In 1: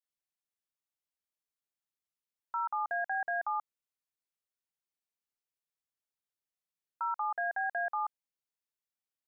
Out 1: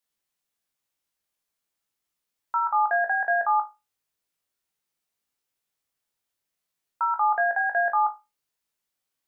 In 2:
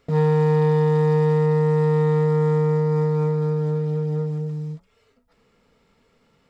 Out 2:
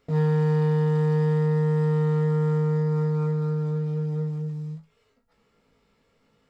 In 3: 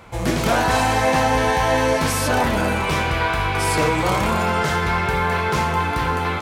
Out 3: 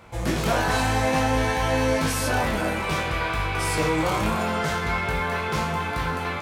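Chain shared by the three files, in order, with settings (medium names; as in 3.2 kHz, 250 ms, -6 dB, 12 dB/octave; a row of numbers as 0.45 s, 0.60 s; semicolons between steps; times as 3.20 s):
feedback comb 53 Hz, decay 0.23 s, harmonics all, mix 90%; normalise loudness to -24 LUFS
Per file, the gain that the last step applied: +15.0 dB, +1.0 dB, +1.0 dB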